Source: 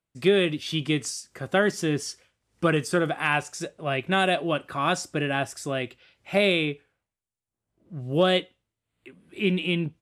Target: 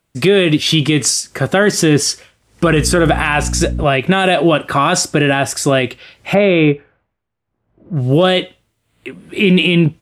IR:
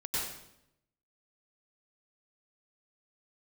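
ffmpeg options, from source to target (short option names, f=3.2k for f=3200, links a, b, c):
-filter_complex "[0:a]asettb=1/sr,asplit=3[a][b][c];[a]atrim=end=2.654[d];[b]atrim=start=2.65:end=3.84,asetpts=PTS-STARTPTS,afade=t=in:d=0.004:c=qsin,afade=t=out:st=1.186:d=0.004:c=qsin,aeval=exprs='val(0)+0.0158*(sin(2*PI*60*n/s)+sin(2*PI*2*60*n/s)/2+sin(2*PI*3*60*n/s)/3+sin(2*PI*4*60*n/s)/4+sin(2*PI*5*60*n/s)/5)':c=same[e];[c]atrim=start=3.836[f];[d][e]acrossfade=d=0.004:c1=hsin:c2=qsin[g];[g][f]acrossfade=d=0.004:c1=qsin:c2=hsin,asplit=3[h][i][j];[h]afade=t=out:st=6.33:d=0.02[k];[i]lowpass=1.8k,afade=t=in:st=6.33:d=0.02,afade=t=out:st=7.95:d=0.02[l];[j]afade=t=in:st=7.95:d=0.02[m];[k][l][m]amix=inputs=3:normalize=0,alimiter=level_in=19dB:limit=-1dB:release=50:level=0:latency=1,volume=-1dB"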